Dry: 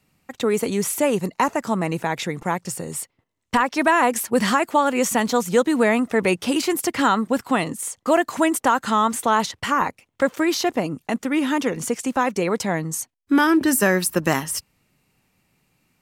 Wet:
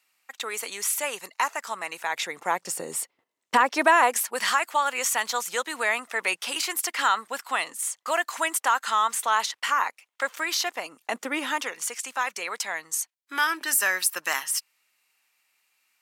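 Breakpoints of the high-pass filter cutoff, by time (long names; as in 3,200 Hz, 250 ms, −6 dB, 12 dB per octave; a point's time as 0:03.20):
0:01.96 1,200 Hz
0:02.80 390 Hz
0:03.73 390 Hz
0:04.44 1,100 Hz
0:10.91 1,100 Hz
0:11.24 480 Hz
0:11.79 1,300 Hz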